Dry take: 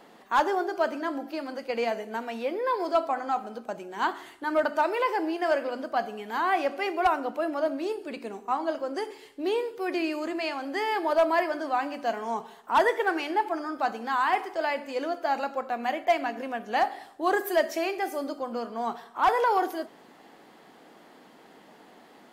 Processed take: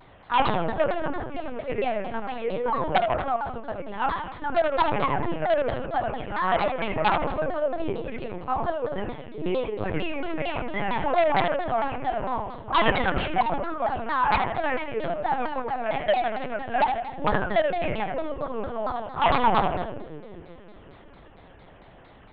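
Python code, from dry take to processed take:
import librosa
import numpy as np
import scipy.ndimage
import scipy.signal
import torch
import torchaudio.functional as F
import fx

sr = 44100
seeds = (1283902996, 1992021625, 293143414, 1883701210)

p1 = scipy.signal.sosfilt(scipy.signal.butter(4, 220.0, 'highpass', fs=sr, output='sos'), x)
p2 = fx.level_steps(p1, sr, step_db=22)
p3 = p1 + (p2 * librosa.db_to_amplitude(-1.0))
p4 = 10.0 ** (-14.0 / 20.0) * (np.abs((p3 / 10.0 ** (-14.0 / 20.0) + 3.0) % 4.0 - 2.0) - 1.0)
p5 = p4 + fx.echo_split(p4, sr, split_hz=410.0, low_ms=370, high_ms=81, feedback_pct=52, wet_db=-5, dry=0)
p6 = fx.lpc_vocoder(p5, sr, seeds[0], excitation='pitch_kept', order=10)
y = fx.vibrato_shape(p6, sr, shape='saw_down', rate_hz=4.4, depth_cents=250.0)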